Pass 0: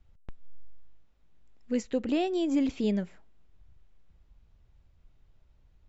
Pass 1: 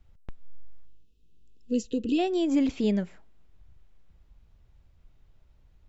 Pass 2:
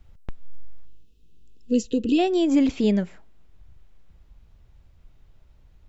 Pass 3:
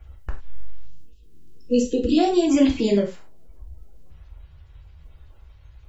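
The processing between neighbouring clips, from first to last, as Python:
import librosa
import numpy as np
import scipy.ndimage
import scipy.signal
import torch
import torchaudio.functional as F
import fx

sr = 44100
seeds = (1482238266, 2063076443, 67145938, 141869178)

y1 = fx.spec_box(x, sr, start_s=0.85, length_s=1.34, low_hz=500.0, high_hz=2500.0, gain_db=-21)
y1 = y1 * 10.0 ** (2.5 / 20.0)
y2 = fx.rider(y1, sr, range_db=10, speed_s=2.0)
y2 = y2 * 10.0 ** (5.0 / 20.0)
y3 = fx.spec_quant(y2, sr, step_db=30)
y3 = fx.rev_gated(y3, sr, seeds[0], gate_ms=130, shape='falling', drr_db=0.0)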